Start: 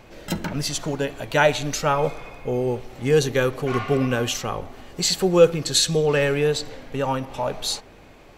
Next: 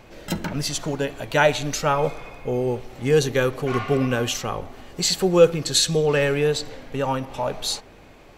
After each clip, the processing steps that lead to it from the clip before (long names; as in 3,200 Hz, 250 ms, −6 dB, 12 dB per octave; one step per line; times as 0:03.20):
no processing that can be heard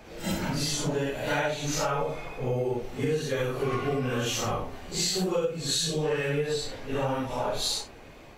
random phases in long frames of 200 ms
downward compressor 12 to 1, threshold −24 dBFS, peak gain reduction 16.5 dB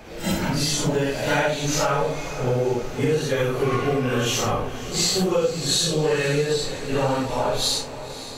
feedback delay with all-pass diffusion 552 ms, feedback 61%, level −14 dB
level +6 dB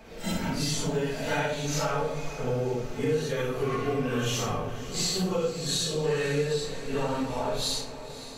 rectangular room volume 2,200 cubic metres, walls furnished, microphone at 1.6 metres
level −8 dB